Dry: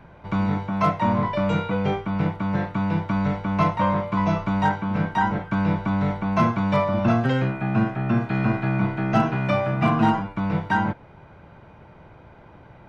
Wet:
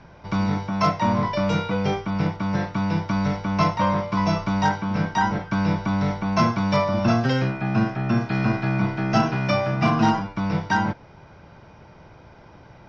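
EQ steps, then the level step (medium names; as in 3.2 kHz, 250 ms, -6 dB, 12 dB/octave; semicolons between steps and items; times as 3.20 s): resonant low-pass 5.4 kHz, resonance Q 8.2; 0.0 dB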